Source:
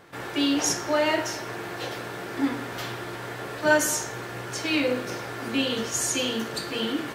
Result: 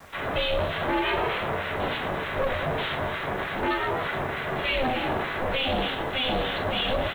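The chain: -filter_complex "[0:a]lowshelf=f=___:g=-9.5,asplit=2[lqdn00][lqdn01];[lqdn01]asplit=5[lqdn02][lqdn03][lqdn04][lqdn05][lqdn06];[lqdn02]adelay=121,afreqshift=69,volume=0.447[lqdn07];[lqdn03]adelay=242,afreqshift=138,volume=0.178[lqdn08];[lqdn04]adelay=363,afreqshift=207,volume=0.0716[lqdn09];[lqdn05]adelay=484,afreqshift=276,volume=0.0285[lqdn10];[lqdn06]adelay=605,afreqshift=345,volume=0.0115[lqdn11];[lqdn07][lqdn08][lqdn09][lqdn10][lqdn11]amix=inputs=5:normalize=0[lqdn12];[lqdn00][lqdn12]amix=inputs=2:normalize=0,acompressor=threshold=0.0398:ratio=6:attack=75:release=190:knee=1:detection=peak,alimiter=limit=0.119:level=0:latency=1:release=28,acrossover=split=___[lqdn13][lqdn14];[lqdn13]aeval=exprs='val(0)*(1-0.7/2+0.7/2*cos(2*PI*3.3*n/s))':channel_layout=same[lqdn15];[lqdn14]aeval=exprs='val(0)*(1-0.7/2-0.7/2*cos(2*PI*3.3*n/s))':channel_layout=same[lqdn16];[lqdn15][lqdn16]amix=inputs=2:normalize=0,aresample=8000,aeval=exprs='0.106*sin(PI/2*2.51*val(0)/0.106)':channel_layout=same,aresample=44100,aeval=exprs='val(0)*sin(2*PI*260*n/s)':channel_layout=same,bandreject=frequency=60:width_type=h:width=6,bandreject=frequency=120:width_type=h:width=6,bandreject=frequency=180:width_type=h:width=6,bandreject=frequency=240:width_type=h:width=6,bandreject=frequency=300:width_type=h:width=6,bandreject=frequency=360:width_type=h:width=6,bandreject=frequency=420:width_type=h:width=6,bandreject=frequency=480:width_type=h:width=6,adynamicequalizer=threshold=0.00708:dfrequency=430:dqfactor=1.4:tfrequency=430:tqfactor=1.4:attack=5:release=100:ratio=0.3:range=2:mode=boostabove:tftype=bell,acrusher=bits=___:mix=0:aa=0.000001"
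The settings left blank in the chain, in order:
120, 1300, 8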